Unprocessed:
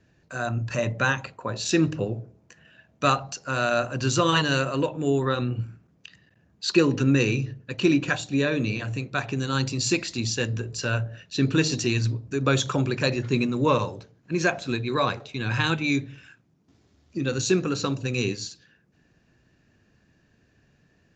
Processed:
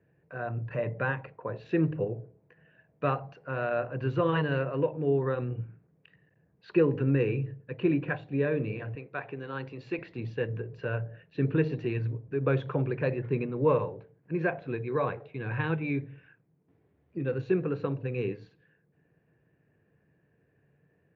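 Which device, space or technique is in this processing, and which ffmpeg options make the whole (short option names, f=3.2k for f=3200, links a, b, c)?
bass cabinet: -filter_complex "[0:a]highpass=87,equalizer=f=150:t=q:w=4:g=6,equalizer=f=230:t=q:w=4:g=-6,equalizer=f=460:t=q:w=4:g=8,equalizer=f=1.3k:t=q:w=4:g=-5,lowpass=f=2.2k:w=0.5412,lowpass=f=2.2k:w=1.3066,asettb=1/sr,asplit=3[a][b][c];[a]atrim=end=8.954[d];[b]atrim=start=8.95:end=9.99,asetpts=PTS-STARTPTS,afade=t=in:d=0.004:c=qsin,afade=t=out:st=1.036:d=0.004:c=qsin,highpass=f=430:p=1[e];[c]atrim=start=9.986[f];[d][e]acrossfade=d=0.004:c1=hsin:c2=qsin[g];[g][f]acrossfade=d=0.004:c1=qsin:c2=hsin,volume=-6dB"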